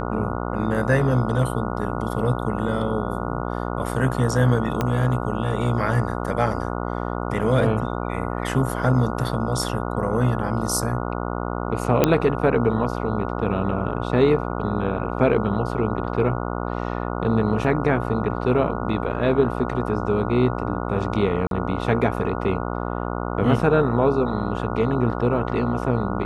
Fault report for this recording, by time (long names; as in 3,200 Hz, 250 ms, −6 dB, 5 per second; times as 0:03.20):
mains buzz 60 Hz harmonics 24 −27 dBFS
0:04.81: click −9 dBFS
0:12.04: click −2 dBFS
0:21.47–0:21.51: drop-out 42 ms